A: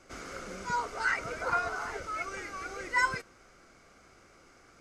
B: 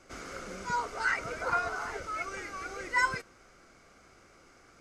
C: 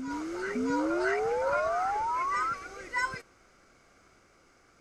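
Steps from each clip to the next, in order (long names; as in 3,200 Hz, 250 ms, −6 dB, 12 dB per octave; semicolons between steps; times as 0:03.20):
no processing that can be heard
sound drawn into the spectrogram rise, 0:00.55–0:02.54, 240–1,400 Hz −27 dBFS; backwards echo 624 ms −6 dB; level −3.5 dB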